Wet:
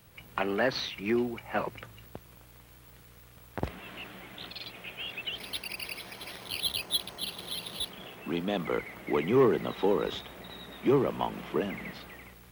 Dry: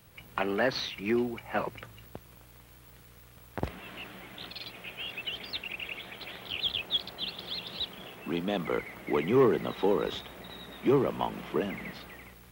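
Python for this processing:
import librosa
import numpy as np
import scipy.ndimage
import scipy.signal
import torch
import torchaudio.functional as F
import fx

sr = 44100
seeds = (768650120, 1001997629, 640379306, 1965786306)

y = fx.resample_bad(x, sr, factor=6, down='none', up='hold', at=(5.38, 7.9))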